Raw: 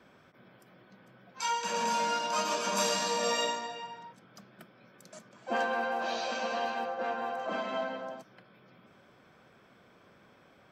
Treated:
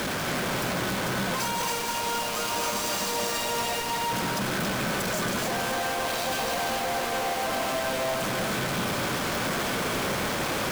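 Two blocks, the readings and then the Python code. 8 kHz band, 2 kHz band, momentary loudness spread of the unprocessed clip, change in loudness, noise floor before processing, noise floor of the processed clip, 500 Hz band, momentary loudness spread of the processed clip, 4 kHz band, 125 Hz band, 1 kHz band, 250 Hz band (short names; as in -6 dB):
+8.0 dB, +8.5 dB, 14 LU, +4.5 dB, -61 dBFS, -30 dBFS, +6.0 dB, 1 LU, +8.0 dB, +19.5 dB, +4.5 dB, +11.5 dB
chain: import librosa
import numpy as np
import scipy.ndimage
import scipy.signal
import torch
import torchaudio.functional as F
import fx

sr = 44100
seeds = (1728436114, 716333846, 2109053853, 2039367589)

p1 = np.sign(x) * np.sqrt(np.mean(np.square(x)))
p2 = fx.dmg_noise_band(p1, sr, seeds[0], low_hz=91.0, high_hz=1100.0, level_db=-47.0)
p3 = p2 + fx.echo_single(p2, sr, ms=277, db=-4.5, dry=0)
y = p3 * librosa.db_to_amplitude(5.5)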